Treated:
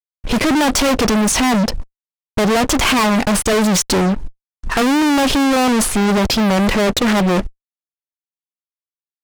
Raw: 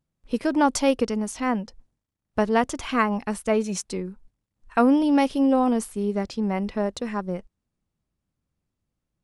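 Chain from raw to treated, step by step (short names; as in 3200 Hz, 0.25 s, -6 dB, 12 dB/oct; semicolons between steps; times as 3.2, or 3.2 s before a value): high shelf 7300 Hz -8.5 dB; fuzz box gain 46 dB, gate -55 dBFS; Doppler distortion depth 0.23 ms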